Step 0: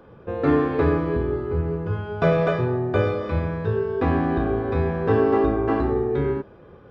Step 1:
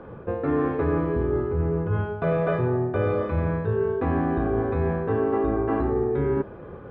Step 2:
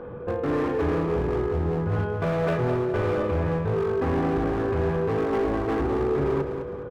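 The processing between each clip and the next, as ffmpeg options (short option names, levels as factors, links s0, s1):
-af "lowpass=2100,areverse,acompressor=threshold=0.0398:ratio=6,areverse,volume=2.24"
-filter_complex "[0:a]aeval=exprs='val(0)+0.0126*sin(2*PI*490*n/s)':c=same,volume=14.1,asoftclip=hard,volume=0.0708,asplit=2[s0][s1];[s1]aecho=0:1:208|416|624|832:0.398|0.155|0.0606|0.0236[s2];[s0][s2]amix=inputs=2:normalize=0,volume=1.12"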